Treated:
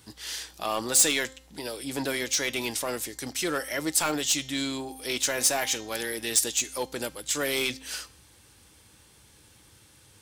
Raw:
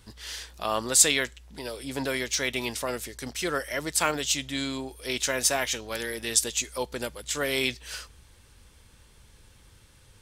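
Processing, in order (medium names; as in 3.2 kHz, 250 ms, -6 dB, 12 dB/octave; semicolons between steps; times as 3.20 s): high-pass 91 Hz 12 dB/octave; saturation -19 dBFS, distortion -11 dB; treble shelf 4.9 kHz +6 dB; de-hum 262.5 Hz, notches 29; small resonant body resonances 310/790 Hz, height 8 dB, ringing for 85 ms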